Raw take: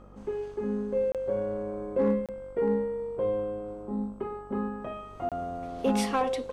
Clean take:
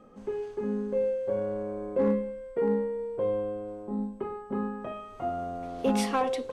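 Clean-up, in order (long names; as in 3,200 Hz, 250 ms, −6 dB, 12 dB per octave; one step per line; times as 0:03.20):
hum removal 48.3 Hz, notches 29
repair the gap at 0:01.12/0:02.26/0:05.29, 27 ms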